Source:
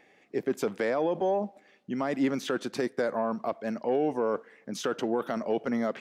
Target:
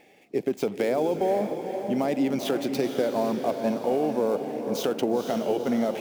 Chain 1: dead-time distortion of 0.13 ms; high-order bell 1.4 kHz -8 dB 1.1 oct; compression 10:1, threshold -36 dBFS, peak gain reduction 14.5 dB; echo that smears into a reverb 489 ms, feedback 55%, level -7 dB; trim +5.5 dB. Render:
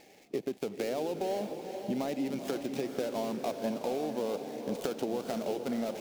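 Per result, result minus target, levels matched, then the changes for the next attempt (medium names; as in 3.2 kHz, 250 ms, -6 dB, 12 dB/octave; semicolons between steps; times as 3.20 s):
compression: peak gain reduction +9 dB; dead-time distortion: distortion +10 dB
change: compression 10:1, threshold -26 dBFS, peak gain reduction 5.5 dB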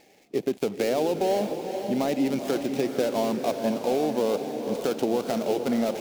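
dead-time distortion: distortion +10 dB
change: dead-time distortion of 0.047 ms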